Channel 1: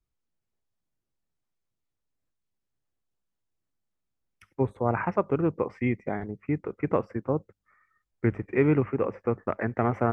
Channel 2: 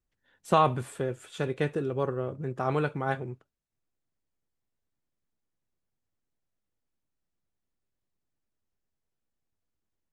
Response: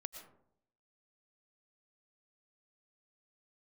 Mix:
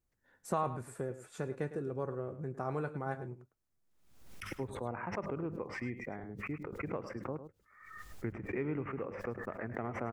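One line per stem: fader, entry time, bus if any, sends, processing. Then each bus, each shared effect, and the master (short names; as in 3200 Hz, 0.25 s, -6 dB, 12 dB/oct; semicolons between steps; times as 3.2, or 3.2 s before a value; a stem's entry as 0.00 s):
-5.5 dB, 0.00 s, no send, echo send -12 dB, vibrato 0.46 Hz 12 cents; backwards sustainer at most 71 dB/s
+1.0 dB, 0.00 s, no send, echo send -14.5 dB, bell 3200 Hz -14.5 dB 0.74 oct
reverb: off
echo: echo 0.105 s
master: compressor 1.5:1, threshold -50 dBFS, peak gain reduction 12 dB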